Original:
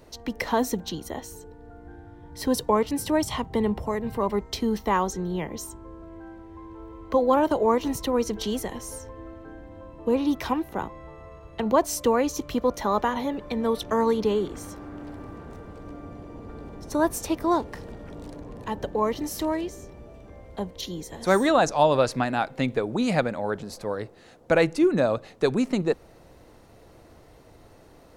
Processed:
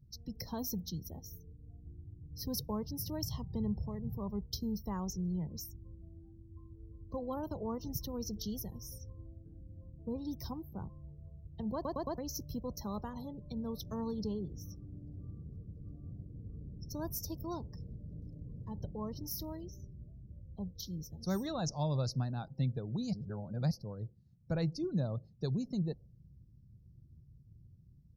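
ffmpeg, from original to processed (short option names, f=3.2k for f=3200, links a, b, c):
-filter_complex "[0:a]asplit=7[a][b][c][d][e][f][g];[a]atrim=end=11.852[h];[b]atrim=start=11.738:end=11.852[i];[c]atrim=start=11.738:end=11.852[j];[d]atrim=start=11.738:end=11.852[k];[e]atrim=start=12.178:end=23.132[l];[f]atrim=start=23.128:end=23.712,asetpts=PTS-STARTPTS,areverse[m];[g]atrim=start=23.708[n];[h][i]acrossfade=d=0.004:c1=hsin:c2=hsin[o];[o][j]acrossfade=d=0.004:c1=hsin:c2=hsin[p];[p][k]acrossfade=d=0.004:c1=hsin:c2=hsin[q];[q][l]acrossfade=d=0.004:c1=hsin:c2=hsin[r];[r][m]acrossfade=d=0.004:c1=hsin:c2=hsin[s];[s][n]acrossfade=d=0.004:c1=hsin:c2=hsin,firequalizer=gain_entry='entry(140,0);entry(260,-18);entry(460,-22);entry(2300,-28);entry(5300,-5);entry(8100,-23);entry(13000,-2)':delay=0.05:min_phase=1,afftdn=nr=26:nf=-56,highpass=f=110:p=1,volume=3dB"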